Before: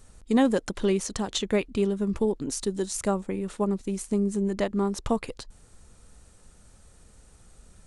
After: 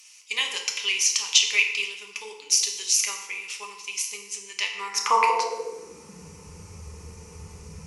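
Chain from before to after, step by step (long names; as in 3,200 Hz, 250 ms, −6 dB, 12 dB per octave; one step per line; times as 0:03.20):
EQ curve with evenly spaced ripples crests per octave 0.8, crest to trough 13 dB
feedback delay network reverb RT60 1.1 s, low-frequency decay 0.8×, high-frequency decay 0.7×, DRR 1.5 dB
high-pass filter sweep 3,000 Hz → 90 Hz, 0:04.72–0:06.49
level +8 dB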